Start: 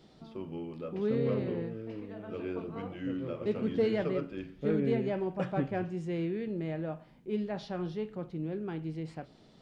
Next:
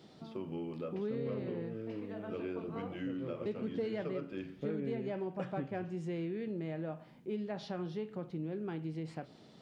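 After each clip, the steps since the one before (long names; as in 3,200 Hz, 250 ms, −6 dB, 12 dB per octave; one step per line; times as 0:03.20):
high-pass filter 100 Hz
downward compressor 3 to 1, threshold −38 dBFS, peak gain reduction 11 dB
level +1.5 dB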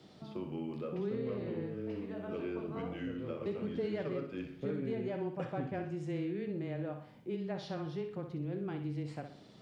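frequency shifter −13 Hz
on a send: flutter between parallel walls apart 10.7 metres, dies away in 0.45 s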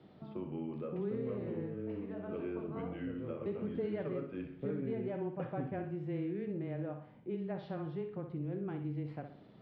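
high-frequency loss of the air 410 metres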